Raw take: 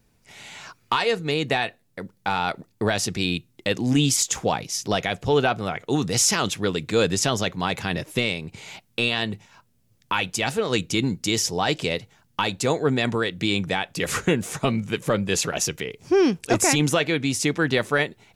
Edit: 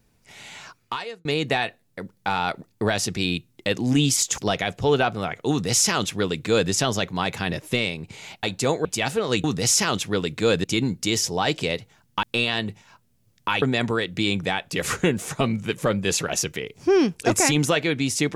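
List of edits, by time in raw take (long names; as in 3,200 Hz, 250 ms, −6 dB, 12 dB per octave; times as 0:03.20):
0:00.56–0:01.25: fade out
0:04.38–0:04.82: remove
0:05.95–0:07.15: duplicate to 0:10.85
0:08.87–0:10.26: swap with 0:12.44–0:12.86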